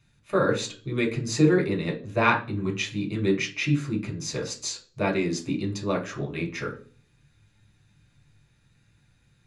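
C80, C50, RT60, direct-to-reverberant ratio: 17.5 dB, 12.0 dB, 0.40 s, −0.5 dB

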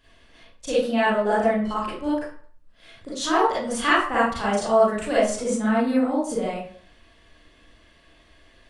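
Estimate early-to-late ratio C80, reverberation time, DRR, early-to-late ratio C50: 6.0 dB, 0.50 s, −9.5 dB, −1.5 dB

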